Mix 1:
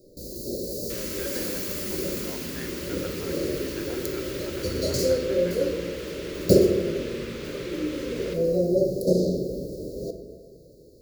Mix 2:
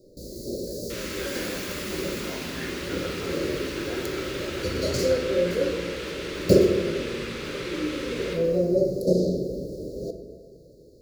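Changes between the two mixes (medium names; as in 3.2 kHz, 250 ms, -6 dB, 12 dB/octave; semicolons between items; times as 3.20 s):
speech: send +8.5 dB; first sound: add treble shelf 10 kHz -9.5 dB; second sound: send +9.5 dB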